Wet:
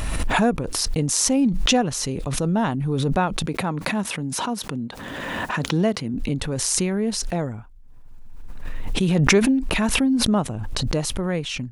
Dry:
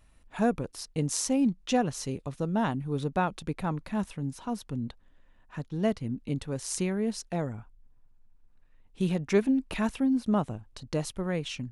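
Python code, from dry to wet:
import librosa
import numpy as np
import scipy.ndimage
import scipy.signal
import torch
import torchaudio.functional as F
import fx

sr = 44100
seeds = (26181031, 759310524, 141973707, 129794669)

y = fx.highpass(x, sr, hz=150.0, slope=12, at=(3.46, 6.14))
y = fx.pre_swell(y, sr, db_per_s=21.0)
y = F.gain(torch.from_numpy(y), 5.5).numpy()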